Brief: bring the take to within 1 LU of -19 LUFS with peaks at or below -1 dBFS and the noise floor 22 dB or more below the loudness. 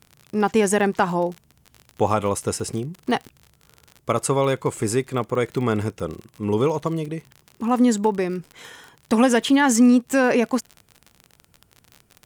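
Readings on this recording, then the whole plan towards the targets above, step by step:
tick rate 45 per s; loudness -21.5 LUFS; peak level -6.5 dBFS; loudness target -19.0 LUFS
-> de-click; trim +2.5 dB

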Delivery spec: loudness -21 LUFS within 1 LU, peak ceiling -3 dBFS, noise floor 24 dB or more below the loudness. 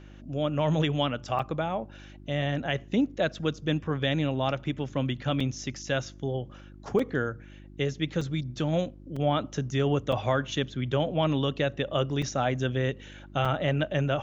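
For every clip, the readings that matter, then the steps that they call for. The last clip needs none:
dropouts 8; longest dropout 4.5 ms; hum 50 Hz; highest harmonic 350 Hz; hum level -47 dBFS; loudness -29.0 LUFS; peak level -13.0 dBFS; loudness target -21.0 LUFS
-> interpolate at 1.39/5.40/6.99/8.21/9.16/10.12/12.22/13.45 s, 4.5 ms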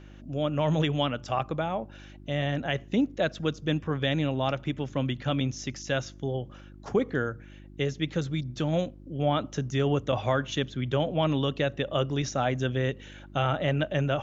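dropouts 0; hum 50 Hz; highest harmonic 350 Hz; hum level -47 dBFS
-> de-hum 50 Hz, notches 7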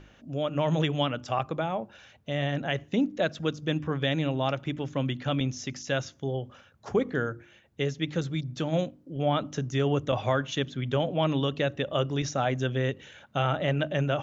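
hum not found; loudness -29.5 LUFS; peak level -13.0 dBFS; loudness target -21.0 LUFS
-> trim +8.5 dB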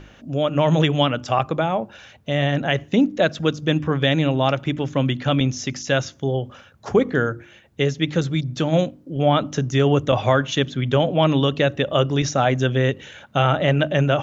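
loudness -21.0 LUFS; peak level -4.5 dBFS; noise floor -49 dBFS

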